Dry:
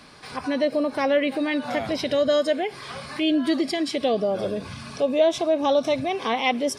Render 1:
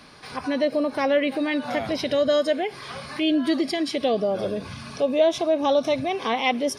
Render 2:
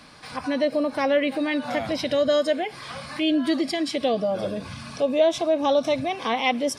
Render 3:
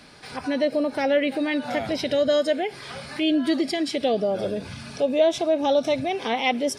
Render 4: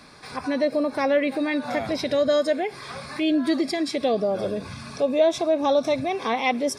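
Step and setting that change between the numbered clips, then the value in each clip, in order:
notch, frequency: 7700, 400, 1100, 3000 Hz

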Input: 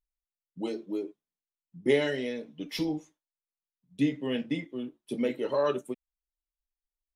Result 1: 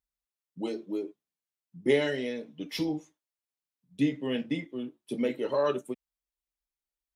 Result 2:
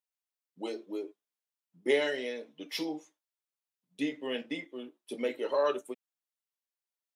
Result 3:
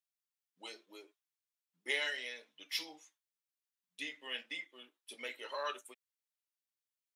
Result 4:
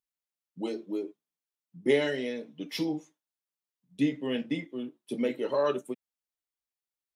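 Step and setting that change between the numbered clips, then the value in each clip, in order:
HPF, cutoff: 40, 400, 1400, 130 Hz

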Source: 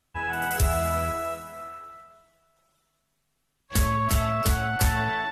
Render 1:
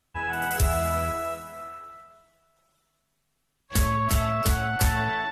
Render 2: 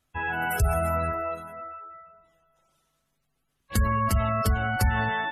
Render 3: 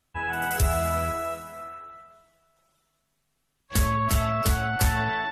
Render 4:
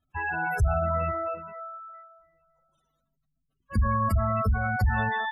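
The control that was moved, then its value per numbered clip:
spectral gate, under each frame's peak: -55, -25, -45, -15 dB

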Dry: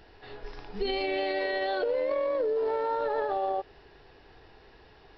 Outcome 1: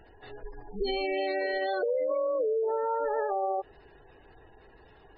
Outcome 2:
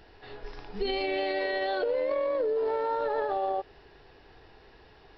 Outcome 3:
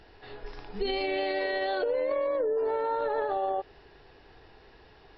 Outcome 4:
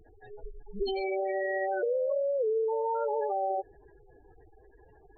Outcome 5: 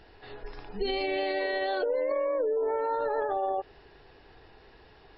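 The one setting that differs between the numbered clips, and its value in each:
spectral gate, under each frame's peak: -20, -60, -45, -10, -35 dB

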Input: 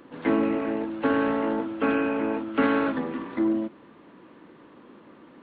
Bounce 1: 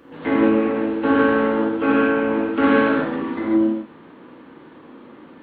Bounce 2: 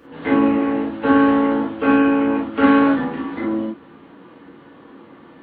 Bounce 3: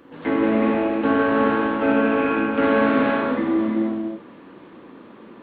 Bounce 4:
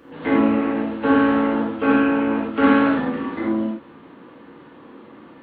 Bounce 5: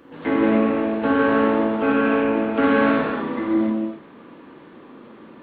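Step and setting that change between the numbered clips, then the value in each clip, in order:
non-linear reverb, gate: 190, 80, 520, 130, 330 ms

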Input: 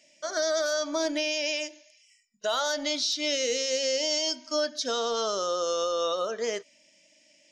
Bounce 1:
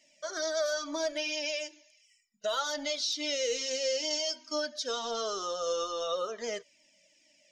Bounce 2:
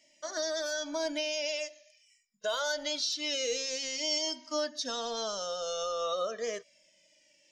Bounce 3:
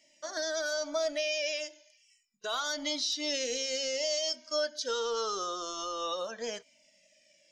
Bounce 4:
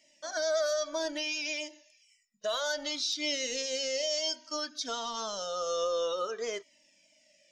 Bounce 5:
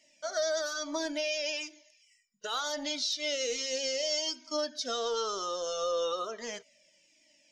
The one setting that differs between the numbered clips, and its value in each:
cascading flanger, rate: 2.2, 0.23, 0.34, 0.6, 1.1 Hz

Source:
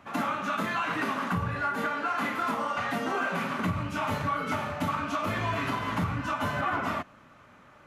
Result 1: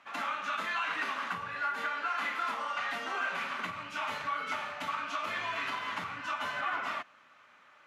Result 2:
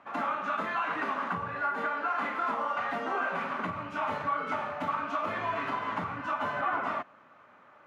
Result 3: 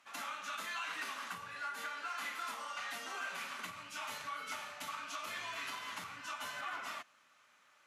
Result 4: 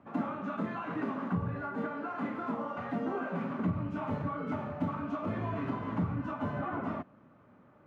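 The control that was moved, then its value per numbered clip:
band-pass, frequency: 2800, 940, 7500, 240 Hz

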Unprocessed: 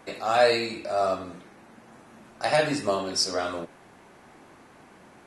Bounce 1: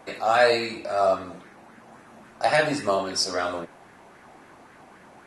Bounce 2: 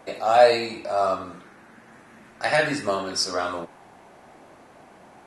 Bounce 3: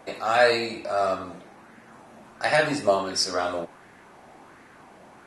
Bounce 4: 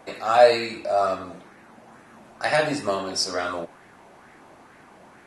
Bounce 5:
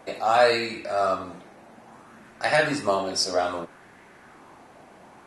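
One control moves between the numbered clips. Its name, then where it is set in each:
LFO bell, rate: 3.7, 0.22, 1.4, 2.2, 0.62 Hz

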